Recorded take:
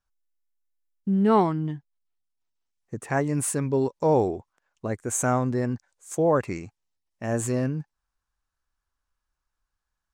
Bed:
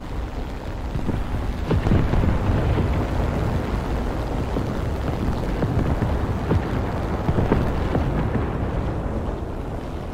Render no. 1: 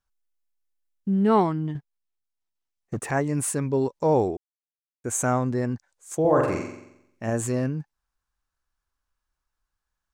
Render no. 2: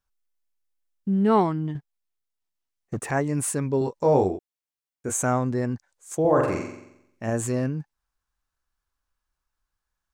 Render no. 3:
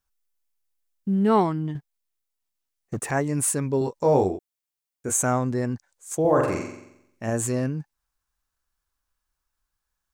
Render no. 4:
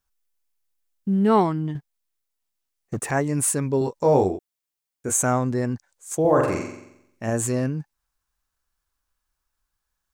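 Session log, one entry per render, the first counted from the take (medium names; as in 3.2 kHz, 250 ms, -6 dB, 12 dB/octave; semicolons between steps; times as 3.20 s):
1.75–3.11 s: waveshaping leveller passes 2; 4.37–5.04 s: mute; 6.20–7.30 s: flutter echo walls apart 7.6 m, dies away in 0.8 s
3.79–5.14 s: doubling 21 ms -5 dB
treble shelf 5.9 kHz +6 dB
trim +1.5 dB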